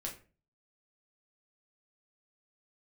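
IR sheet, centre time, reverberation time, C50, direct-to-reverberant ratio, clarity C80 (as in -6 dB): 20 ms, 0.35 s, 10.0 dB, -1.5 dB, 15.0 dB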